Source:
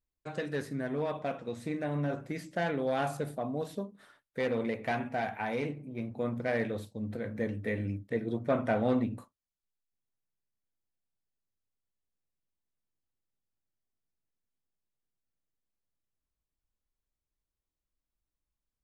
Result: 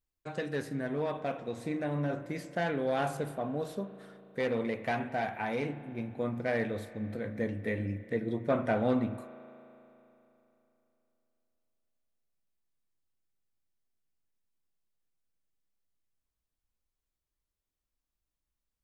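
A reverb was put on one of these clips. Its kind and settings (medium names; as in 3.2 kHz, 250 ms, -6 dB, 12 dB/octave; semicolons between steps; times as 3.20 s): spring tank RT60 3.2 s, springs 36 ms, chirp 75 ms, DRR 13 dB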